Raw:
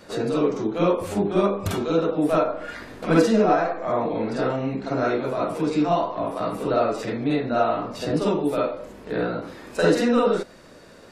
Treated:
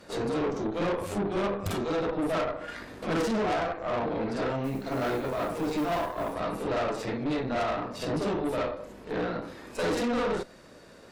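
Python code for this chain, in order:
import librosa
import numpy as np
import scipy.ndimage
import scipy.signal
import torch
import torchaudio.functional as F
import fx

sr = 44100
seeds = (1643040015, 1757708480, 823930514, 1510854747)

y = fx.tube_stage(x, sr, drive_db=25.0, bias=0.7)
y = fx.mod_noise(y, sr, seeds[0], snr_db=26, at=(4.63, 6.33), fade=0.02)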